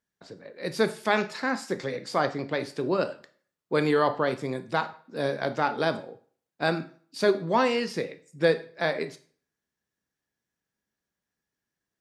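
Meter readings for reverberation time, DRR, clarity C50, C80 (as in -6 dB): 0.50 s, 11.0 dB, 15.0 dB, 20.5 dB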